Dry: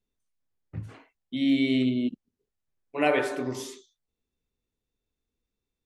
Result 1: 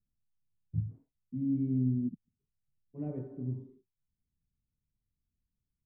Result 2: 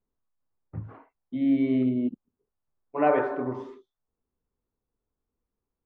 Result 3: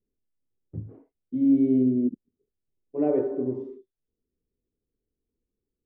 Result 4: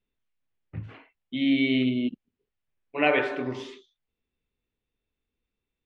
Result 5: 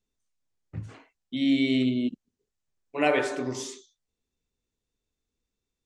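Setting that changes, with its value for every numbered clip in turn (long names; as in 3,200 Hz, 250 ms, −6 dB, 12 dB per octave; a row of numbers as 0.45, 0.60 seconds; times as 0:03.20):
low-pass with resonance, frequency: 150, 1,100, 400, 2,800, 7,300 Hertz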